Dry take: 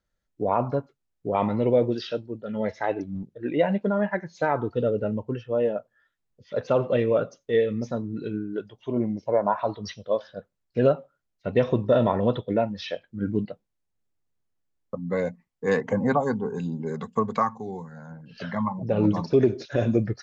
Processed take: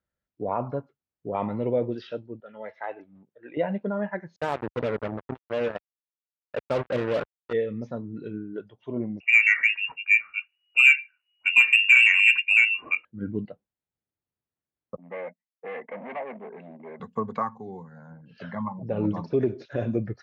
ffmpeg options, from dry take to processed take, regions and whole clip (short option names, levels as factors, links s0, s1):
-filter_complex "[0:a]asettb=1/sr,asplit=3[s0][s1][s2];[s0]atrim=end=2.404[s3];[s1]atrim=start=2.4:end=3.57,asetpts=PTS-STARTPTS,afade=t=in:d=0.004:c=qsin,afade=t=out:st=1.166:d=0.004:c=qsin,highpass=f=270:p=1,acrossover=split=550 4100:gain=0.251 1 0.0708[s4][s5][s6];[s4][s5][s6]amix=inputs=3:normalize=0[s7];[s2]atrim=start=3.566[s8];[s3][s7]acrossfade=d=0.004:c1=hsin:c2=qsin[s9];[s9][s8]acrossfade=d=0.004:c1=qsin:c2=hsin,asettb=1/sr,asplit=3[s10][s11][s12];[s10]atrim=end=4.364[s13];[s11]atrim=start=4.36:end=7.53,asetpts=PTS-STARTPTS,afade=t=in:d=0.004:c=qsin,afade=t=out:st=3.166:d=0.004:c=qsin,equalizer=f=2200:t=o:w=0.35:g=-8.5,acrusher=bits=3:mix=0:aa=0.5[s14];[s12]atrim=start=7.526[s15];[s13][s14]acrossfade=d=0.004:c1=hsin:c2=qsin[s16];[s16][s15]acrossfade=d=0.004:c1=qsin:c2=hsin,asettb=1/sr,asplit=3[s17][s18][s19];[s17]atrim=end=9.204[s20];[s18]atrim=start=9.2:end=13.05,asetpts=PTS-STARTPTS,afade=t=in:d=0.004:c=qsin,afade=t=out:st=3.846:d=0.004:c=qsin,tiltshelf=f=1500:g=8,lowpass=f=2500:t=q:w=0.5098,lowpass=f=2500:t=q:w=0.6013,lowpass=f=2500:t=q:w=0.9,lowpass=f=2500:t=q:w=2.563,afreqshift=-2900,acontrast=57[s21];[s19]atrim=start=13.046[s22];[s20][s21]acrossfade=d=0.004:c1=hsin:c2=qsin[s23];[s23][s22]acrossfade=d=0.004:c1=qsin:c2=hsin,asettb=1/sr,asplit=3[s24][s25][s26];[s24]atrim=end=14.964[s27];[s25]atrim=start=14.96:end=17,asetpts=PTS-STARTPTS,afade=t=in:d=0.004:c=qsin,afade=t=out:st=2.036:d=0.004:c=qsin,agate=range=0.0631:threshold=0.0141:ratio=16:release=100:detection=peak,volume=22.4,asoftclip=hard,volume=0.0447,highpass=f=250:w=0.5412,highpass=f=250:w=1.3066,equalizer=f=280:t=q:w=4:g=-9,equalizer=f=420:t=q:w=4:g=-5,equalizer=f=640:t=q:w=4:g=7,equalizer=f=1400:t=q:w=4:g=-8,equalizer=f=2100:t=q:w=4:g=9,lowpass=f=2600:w=0.5412,lowpass=f=2600:w=1.3066[s28];[s26]atrim=start=16.996[s29];[s27][s28]acrossfade=d=0.004:c1=hsin:c2=qsin[s30];[s30][s29]acrossfade=d=0.004:c1=qsin:c2=hsin,highpass=59,bass=f=250:g=0,treble=f=4000:g=-13,volume=0.596"